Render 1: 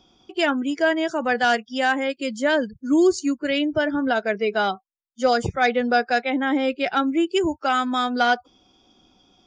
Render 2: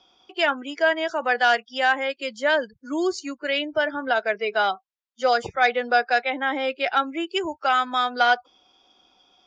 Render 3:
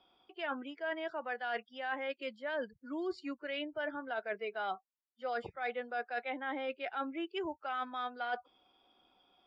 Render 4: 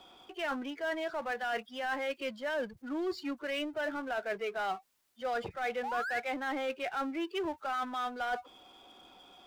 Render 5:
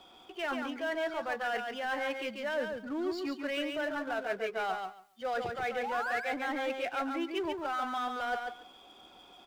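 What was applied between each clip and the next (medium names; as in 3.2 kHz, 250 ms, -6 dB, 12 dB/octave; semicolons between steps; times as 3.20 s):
three-band isolator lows -16 dB, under 470 Hz, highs -21 dB, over 6.1 kHz; trim +1.5 dB
reverse; compression 6:1, threshold -27 dBFS, peak gain reduction 13 dB; reverse; boxcar filter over 7 samples; trim -7 dB
painted sound rise, 5.83–6.20 s, 740–2300 Hz -41 dBFS; power-law waveshaper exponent 0.7
feedback delay 140 ms, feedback 17%, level -5 dB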